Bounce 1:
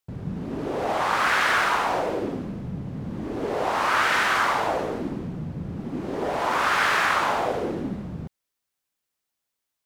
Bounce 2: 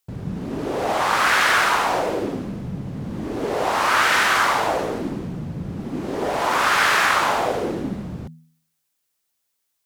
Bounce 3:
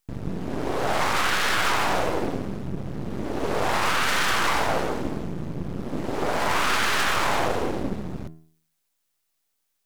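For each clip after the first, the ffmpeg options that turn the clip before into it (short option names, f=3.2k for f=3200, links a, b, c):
-af "highshelf=f=4.2k:g=6.5,bandreject=f=80.27:t=h:w=4,bandreject=f=160.54:t=h:w=4,bandreject=f=240.81:t=h:w=4,volume=3dB"
-af "aeval=exprs='max(val(0),0)':c=same,alimiter=limit=-13.5dB:level=0:latency=1:release=13,volume=2.5dB"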